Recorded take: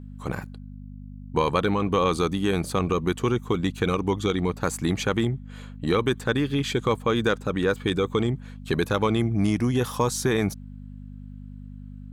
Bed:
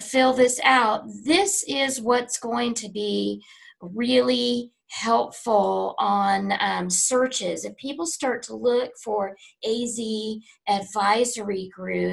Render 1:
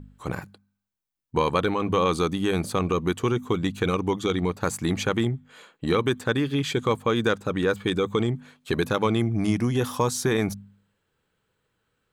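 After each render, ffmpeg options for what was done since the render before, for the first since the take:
ffmpeg -i in.wav -af "bandreject=frequency=50:width_type=h:width=4,bandreject=frequency=100:width_type=h:width=4,bandreject=frequency=150:width_type=h:width=4,bandreject=frequency=200:width_type=h:width=4,bandreject=frequency=250:width_type=h:width=4" out.wav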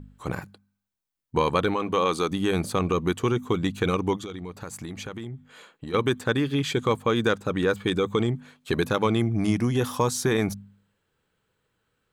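ffmpeg -i in.wav -filter_complex "[0:a]asettb=1/sr,asplit=3[link_01][link_02][link_03];[link_01]atrim=end=1.764[link_04];[link_02]atrim=start=1.76:end=2.31,asetpts=PTS-STARTPTS,afade=type=in:duration=0.004:curve=qsin,afade=type=out:start_time=0.546:duration=0.004:curve=qsin,equalizer=frequency=74:width_type=o:width=2.5:gain=-11[link_05];[link_03]atrim=start=2.306[link_06];[link_04][link_05]acrossfade=duration=0.004:curve1=hsin:curve2=qsin[link_07];[link_07][link_06]acrossfade=duration=0.004:curve1=qsin:curve2=hsin,asplit=3[link_08][link_09][link_10];[link_08]afade=type=out:start_time=4.16:duration=0.02[link_11];[link_09]acompressor=threshold=-34dB:ratio=4:attack=3.2:release=140:knee=1:detection=peak,afade=type=in:start_time=4.16:duration=0.02,afade=type=out:start_time=5.93:duration=0.02[link_12];[link_10]afade=type=in:start_time=5.93:duration=0.02[link_13];[link_11][link_12][link_13]amix=inputs=3:normalize=0" out.wav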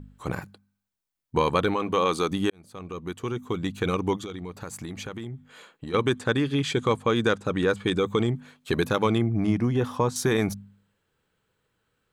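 ffmpeg -i in.wav -filter_complex "[0:a]asettb=1/sr,asplit=3[link_01][link_02][link_03];[link_01]atrim=end=5.884[link_04];[link_02]atrim=start=5.88:end=7.98,asetpts=PTS-STARTPTS,afade=type=in:duration=0.004:curve=qsin,afade=type=out:start_time=2.096:duration=0.004:curve=qsin,lowpass=frequency=11000:width=0.5412,lowpass=frequency=11000:width=1.3066[link_05];[link_03]atrim=start=7.976[link_06];[link_04][link_05]acrossfade=duration=0.004:curve1=hsin:curve2=qsin[link_07];[link_07][link_06]acrossfade=duration=0.004:curve1=qsin:curve2=hsin,asettb=1/sr,asplit=3[link_08][link_09][link_10];[link_08]atrim=end=9.184[link_11];[link_09]atrim=start=9.18:end=10.16,asetpts=PTS-STARTPTS,afade=type=in:duration=0.004:curve=qsin,afade=type=out:start_time=0.976:duration=0.004:curve=qsin,lowpass=frequency=1800:poles=1[link_12];[link_10]atrim=start=10.156[link_13];[link_11][link_12]acrossfade=duration=0.004:curve1=hsin:curve2=qsin[link_14];[link_14][link_13]acrossfade=duration=0.004:curve1=qsin:curve2=hsin,asplit=2[link_15][link_16];[link_15]atrim=end=2.5,asetpts=PTS-STARTPTS,afade=type=out:start_time=2.496:duration=0.004:curve=hsin[link_17];[link_16]atrim=start=2.5,asetpts=PTS-STARTPTS,afade=type=in:duration=1.69[link_18];[link_17][link_18]concat=n=2:v=0:a=1" out.wav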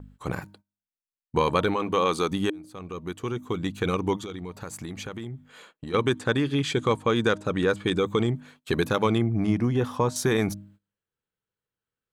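ffmpeg -i in.wav -af "bandreject=frequency=309.7:width_type=h:width=4,bandreject=frequency=619.4:width_type=h:width=4,bandreject=frequency=929.1:width_type=h:width=4,agate=range=-18dB:threshold=-52dB:ratio=16:detection=peak" out.wav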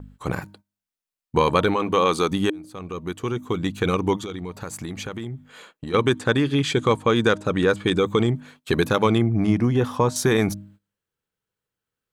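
ffmpeg -i in.wav -af "volume=4dB" out.wav

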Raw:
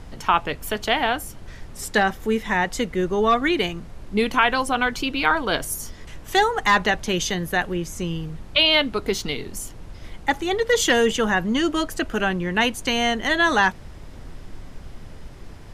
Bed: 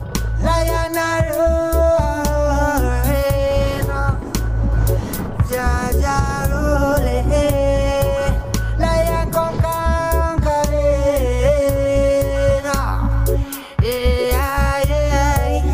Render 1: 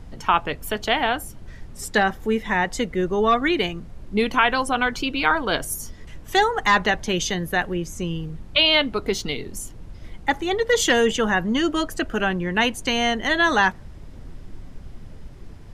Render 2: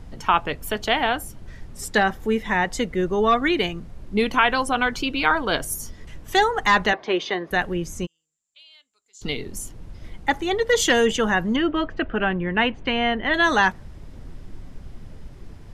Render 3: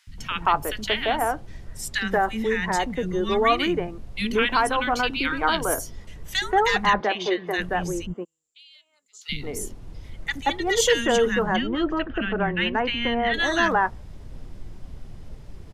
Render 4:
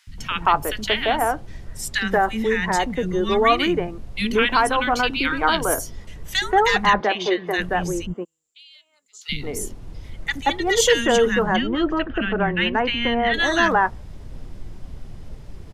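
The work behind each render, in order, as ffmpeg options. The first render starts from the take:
ffmpeg -i in.wav -af "afftdn=noise_reduction=6:noise_floor=-41" out.wav
ffmpeg -i in.wav -filter_complex "[0:a]asettb=1/sr,asplit=3[link_01][link_02][link_03];[link_01]atrim=end=6.934[link_04];[link_02]atrim=start=6.93:end=7.51,asetpts=PTS-STARTPTS,afade=type=in:duration=0.004:curve=qsin,afade=type=out:start_time=0.576:duration=0.004:curve=qsin,highpass=360,equalizer=frequency=370:width_type=q:width=4:gain=7,equalizer=frequency=700:width_type=q:width=4:gain=6,equalizer=frequency=1100:width_type=q:width=4:gain=8,equalizer=frequency=2100:width_type=q:width=4:gain=3,equalizer=frequency=3000:width_type=q:width=4:gain=-4,lowpass=frequency=4000:width=0.5412,lowpass=frequency=4000:width=1.3066[link_05];[link_03]atrim=start=7.506[link_06];[link_04][link_05]acrossfade=duration=0.004:curve1=hsin:curve2=qsin[link_07];[link_07][link_06]acrossfade=duration=0.004:curve1=qsin:curve2=hsin,asplit=3[link_08][link_09][link_10];[link_08]afade=type=out:start_time=8.05:duration=0.02[link_11];[link_09]bandpass=frequency=7300:width_type=q:width=19,afade=type=in:start_time=8.05:duration=0.02,afade=type=out:start_time=9.21:duration=0.02[link_12];[link_10]afade=type=in:start_time=9.21:duration=0.02[link_13];[link_11][link_12][link_13]amix=inputs=3:normalize=0,asettb=1/sr,asplit=3[link_14][link_15][link_16];[link_14]atrim=end=11.564[link_17];[link_15]atrim=start=11.56:end=13.34,asetpts=PTS-STARTPTS,afade=type=in:duration=0.004:curve=qsin,afade=type=out:start_time=1.776:duration=0.004:curve=qsin,lowpass=frequency=3100:width=0.5412,lowpass=frequency=3100:width=1.3066[link_18];[link_16]atrim=start=13.336[link_19];[link_17][link_18]acrossfade=duration=0.004:curve1=hsin:curve2=qsin[link_20];[link_20][link_19]acrossfade=duration=0.004:curve1=qsin:curve2=hsin" out.wav
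ffmpeg -i in.wav -filter_complex "[0:a]acrossover=split=250|1600[link_01][link_02][link_03];[link_01]adelay=70[link_04];[link_02]adelay=180[link_05];[link_04][link_05][link_03]amix=inputs=3:normalize=0" out.wav
ffmpeg -i in.wav -af "volume=3dB" out.wav

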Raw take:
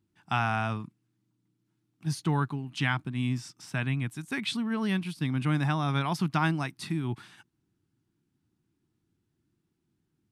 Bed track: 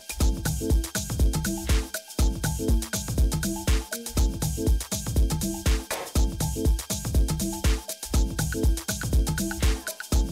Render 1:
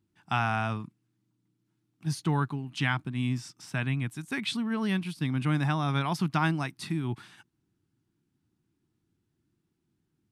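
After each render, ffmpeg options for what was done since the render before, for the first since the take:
ffmpeg -i in.wav -af anull out.wav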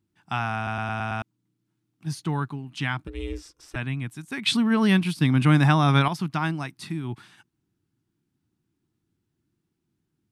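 ffmpeg -i in.wav -filter_complex "[0:a]asettb=1/sr,asplit=3[link_01][link_02][link_03];[link_01]atrim=end=3.074[link_04];[link_02]atrim=start=3.07:end=3.76,asetpts=PTS-STARTPTS,afade=type=in:duration=0.004:curve=qsin,afade=type=out:start_time=0.686:duration=0.004:curve=qsin,aeval=exprs='val(0)*sin(2*PI*180*n/s)':channel_layout=same[link_05];[link_03]atrim=start=3.756[link_06];[link_04][link_05]acrossfade=duration=0.004:curve1=hsin:curve2=qsin[link_07];[link_07][link_06]acrossfade=duration=0.004:curve1=qsin:curve2=hsin,asplit=9[link_08][link_09][link_10][link_11][link_12][link_13][link_14][link_15][link_16];[link_08]atrim=end=0.672[link_17];[link_09]atrim=start=0.558:end=0.672[link_18];[link_10]atrim=start=0.558:end=0.672[link_19];[link_11]atrim=start=0.558:end=0.672[link_20];[link_12]atrim=start=0.558:end=0.672[link_21];[link_13]atrim=start=0.558:end=0.672[link_22];[link_14]atrim=start=1.218:end=4.462[link_23];[link_15]atrim=start=4.458:end=6.082,asetpts=PTS-STARTPTS,volume=9dB[link_24];[link_16]atrim=start=6.078[link_25];[link_17][link_18]acrossfade=duration=0.004:curve1=hsin:curve2=hsin[link_26];[link_26][link_19]acrossfade=duration=0.004:curve1=hsin:curve2=hsin[link_27];[link_27][link_20]acrossfade=duration=0.004:curve1=hsin:curve2=hsin[link_28];[link_28][link_21]acrossfade=duration=0.004:curve1=hsin:curve2=hsin[link_29];[link_29][link_22]acrossfade=duration=0.004:curve1=hsin:curve2=hsin[link_30];[link_30][link_23]acrossfade=duration=0.004:curve1=hsin:curve2=hsin[link_31];[link_31][link_24]acrossfade=duration=0.004:curve1=hsin:curve2=hsin[link_32];[link_32][link_25]acrossfade=duration=0.004:curve1=hsin:curve2=hsin" out.wav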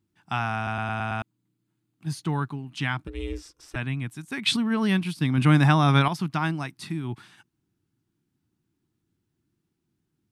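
ffmpeg -i in.wav -filter_complex "[0:a]asettb=1/sr,asplit=3[link_01][link_02][link_03];[link_01]atrim=end=0.724[link_04];[link_02]atrim=start=0.72:end=2.15,asetpts=PTS-STARTPTS,afade=type=in:duration=0.004:curve=qsin,afade=type=out:start_time=1.426:duration=0.004:curve=qsin,bandreject=frequency=5600:width=7.9[link_05];[link_03]atrim=start=2.146[link_06];[link_04][link_05]acrossfade=duration=0.004:curve1=hsin:curve2=qsin[link_07];[link_07][link_06]acrossfade=duration=0.004:curve1=qsin:curve2=hsin,asplit=3[link_08][link_09][link_10];[link_08]atrim=end=4.562[link_11];[link_09]atrim=start=4.558:end=5.382,asetpts=PTS-STARTPTS,volume=-3.5dB[link_12];[link_10]atrim=start=5.378[link_13];[link_11][link_12]acrossfade=duration=0.004:curve1=hsin:curve2=hsin[link_14];[link_14][link_13]acrossfade=duration=0.004:curve1=hsin:curve2=hsin" out.wav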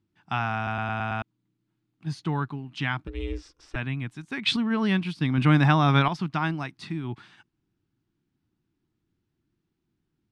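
ffmpeg -i in.wav -af "lowpass=4800,asubboost=boost=2:cutoff=60" out.wav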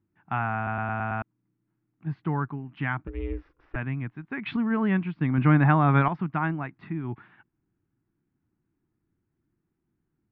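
ffmpeg -i in.wav -af "lowpass=frequency=2100:width=0.5412,lowpass=frequency=2100:width=1.3066" out.wav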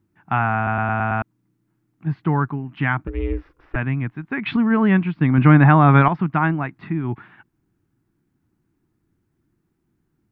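ffmpeg -i in.wav -af "volume=8dB,alimiter=limit=-2dB:level=0:latency=1" out.wav

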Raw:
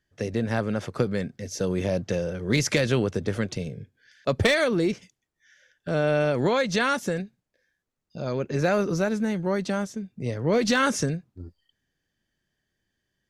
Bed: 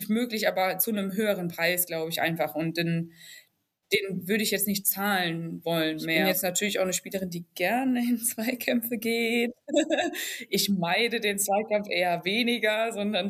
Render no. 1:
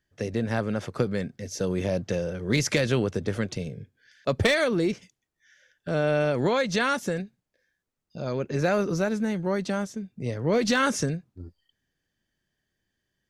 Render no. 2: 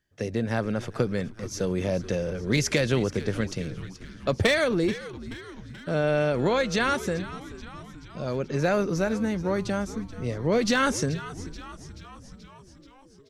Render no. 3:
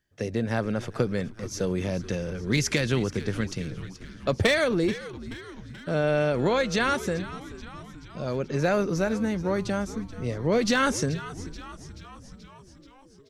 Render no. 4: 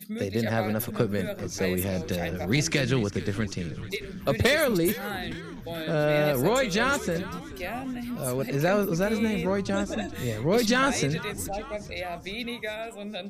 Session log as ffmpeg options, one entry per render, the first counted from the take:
ffmpeg -i in.wav -af "volume=-1dB" out.wav
ffmpeg -i in.wav -filter_complex "[0:a]asplit=8[link_01][link_02][link_03][link_04][link_05][link_06][link_07][link_08];[link_02]adelay=431,afreqshift=-110,volume=-15dB[link_09];[link_03]adelay=862,afreqshift=-220,volume=-19dB[link_10];[link_04]adelay=1293,afreqshift=-330,volume=-23dB[link_11];[link_05]adelay=1724,afreqshift=-440,volume=-27dB[link_12];[link_06]adelay=2155,afreqshift=-550,volume=-31.1dB[link_13];[link_07]adelay=2586,afreqshift=-660,volume=-35.1dB[link_14];[link_08]adelay=3017,afreqshift=-770,volume=-39.1dB[link_15];[link_01][link_09][link_10][link_11][link_12][link_13][link_14][link_15]amix=inputs=8:normalize=0" out.wav
ffmpeg -i in.wav -filter_complex "[0:a]asettb=1/sr,asplit=3[link_01][link_02][link_03];[link_01]atrim=end=1.764[link_04];[link_02]atrim=start=1.76:end=3.72,asetpts=PTS-STARTPTS,afade=type=in:duration=0.004:curve=qsin,afade=type=out:start_time=1.956:duration=0.004:curve=qsin,equalizer=frequency=570:width_type=o:width=0.77:gain=-5.5[link_05];[link_03]atrim=start=3.716[link_06];[link_04][link_05]acrossfade=duration=0.004:curve1=hsin:curve2=qsin[link_07];[link_07][link_06]acrossfade=duration=0.004:curve1=qsin:curve2=hsin" out.wav
ffmpeg -i in.wav -i bed.wav -filter_complex "[1:a]volume=-8.5dB[link_01];[0:a][link_01]amix=inputs=2:normalize=0" out.wav

